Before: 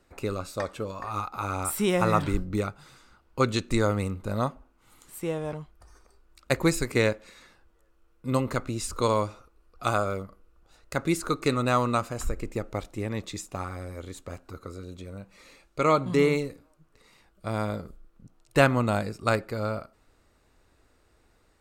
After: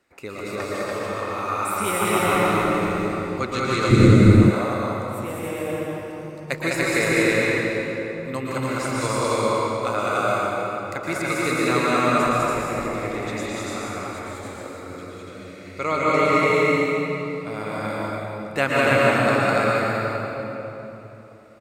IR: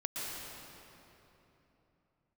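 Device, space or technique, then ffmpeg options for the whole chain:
stadium PA: -filter_complex "[0:a]highpass=frequency=210:poles=1,equalizer=frequency=2100:width_type=o:width=0.69:gain=6.5,aecho=1:1:204.1|288.6:0.794|0.891[link_01];[1:a]atrim=start_sample=2205[link_02];[link_01][link_02]afir=irnorm=-1:irlink=0,asplit=3[link_03][link_04][link_05];[link_03]afade=type=out:start_time=3.89:duration=0.02[link_06];[link_04]asubboost=boost=11.5:cutoff=230,afade=type=in:start_time=3.89:duration=0.02,afade=type=out:start_time=4.49:duration=0.02[link_07];[link_05]afade=type=in:start_time=4.49:duration=0.02[link_08];[link_06][link_07][link_08]amix=inputs=3:normalize=0,volume=-1dB"

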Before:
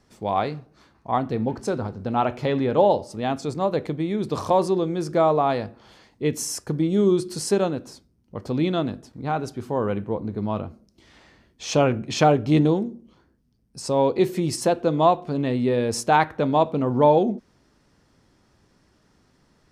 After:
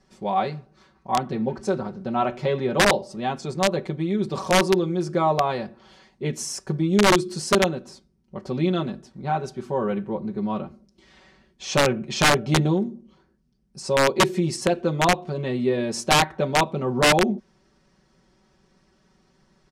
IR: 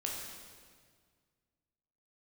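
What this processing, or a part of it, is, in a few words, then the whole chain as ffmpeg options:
overflowing digital effects unit: -af "aecho=1:1:5.3:0.91,aeval=exprs='(mod(2.37*val(0)+1,2)-1)/2.37':channel_layout=same,lowpass=8800,volume=-3dB"

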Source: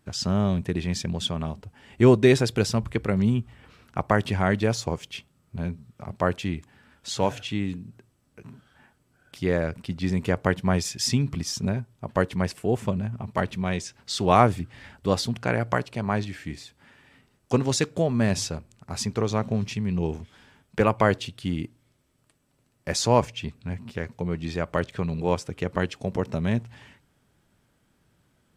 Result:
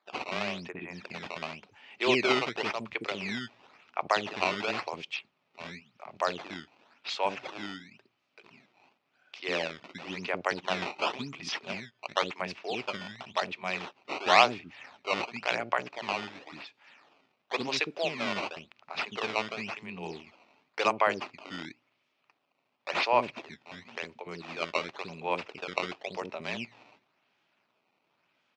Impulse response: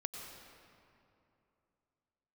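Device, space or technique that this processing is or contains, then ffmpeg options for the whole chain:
circuit-bent sampling toy: -filter_complex "[0:a]asplit=3[link_01][link_02][link_03];[link_01]afade=type=out:start_time=0.68:duration=0.02[link_04];[link_02]lowpass=frequency=2000:width=0.5412,lowpass=frequency=2000:width=1.3066,afade=type=in:start_time=0.68:duration=0.02,afade=type=out:start_time=1.22:duration=0.02[link_05];[link_03]afade=type=in:start_time=1.22:duration=0.02[link_06];[link_04][link_05][link_06]amix=inputs=3:normalize=0,acrossover=split=380[link_07][link_08];[link_07]adelay=60[link_09];[link_09][link_08]amix=inputs=2:normalize=0,acrusher=samples=15:mix=1:aa=0.000001:lfo=1:lforange=24:lforate=0.94,highpass=460,equalizer=frequency=490:width_type=q:width=4:gain=-5,equalizer=frequency=1600:width_type=q:width=4:gain=-4,equalizer=frequency=2500:width_type=q:width=4:gain=8,lowpass=frequency=5000:width=0.5412,lowpass=frequency=5000:width=1.3066,volume=-1dB"

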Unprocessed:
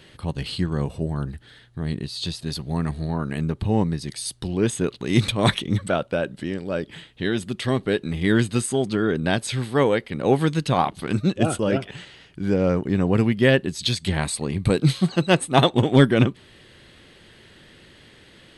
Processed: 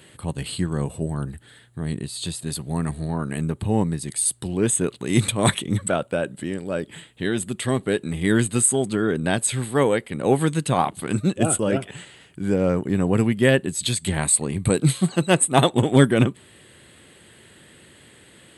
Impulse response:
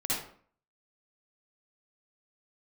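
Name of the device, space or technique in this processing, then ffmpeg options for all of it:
budget condenser microphone: -af "highpass=73,highshelf=frequency=6700:width_type=q:width=3:gain=6.5"

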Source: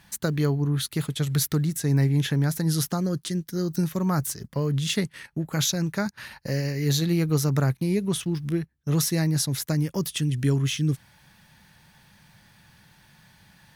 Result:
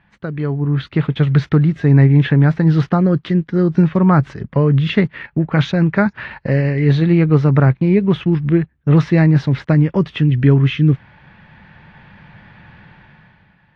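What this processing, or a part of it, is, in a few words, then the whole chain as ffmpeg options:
action camera in a waterproof case: -af "lowpass=frequency=2600:width=0.5412,lowpass=frequency=2600:width=1.3066,dynaudnorm=framelen=160:gausssize=9:maxgain=14dB" -ar 32000 -c:a aac -b:a 48k

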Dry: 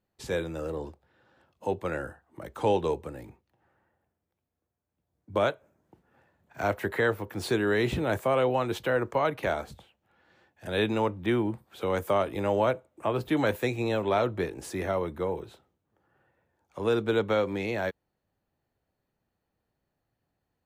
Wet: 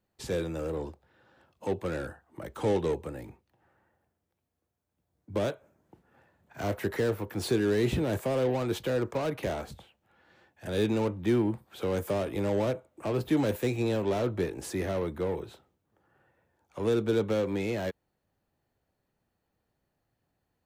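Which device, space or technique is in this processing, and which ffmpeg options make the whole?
one-band saturation: -filter_complex "[0:a]acrossover=split=490|4600[link_01][link_02][link_03];[link_02]asoftclip=type=tanh:threshold=-37.5dB[link_04];[link_01][link_04][link_03]amix=inputs=3:normalize=0,volume=1.5dB"

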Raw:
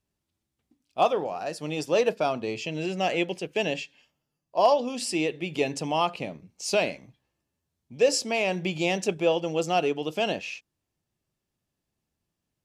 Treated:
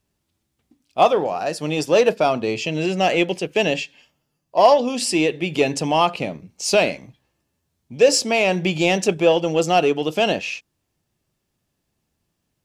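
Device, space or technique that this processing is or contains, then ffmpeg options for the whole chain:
parallel distortion: -filter_complex "[0:a]asplit=2[link_01][link_02];[link_02]asoftclip=type=hard:threshold=-24.5dB,volume=-13dB[link_03];[link_01][link_03]amix=inputs=2:normalize=0,volume=6.5dB"

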